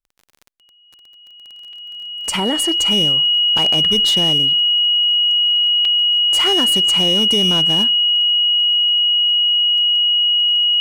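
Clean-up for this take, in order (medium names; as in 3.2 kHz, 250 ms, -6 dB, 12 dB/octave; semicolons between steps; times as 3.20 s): clip repair -10.5 dBFS; de-click; band-stop 2.9 kHz, Q 30; interpolate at 1.73/3.58/5.85 s, 2.6 ms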